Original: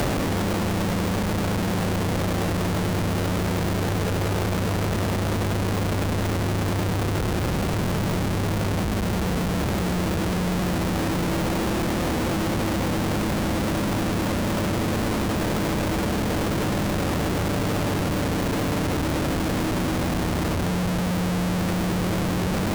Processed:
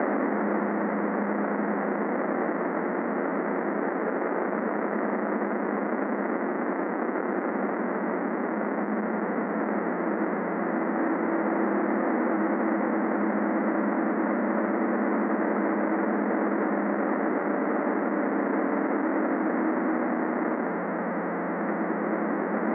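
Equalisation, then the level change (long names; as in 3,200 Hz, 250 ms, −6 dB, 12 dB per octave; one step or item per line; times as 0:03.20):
Chebyshev band-pass filter 210–2,000 Hz, order 5
+1.0 dB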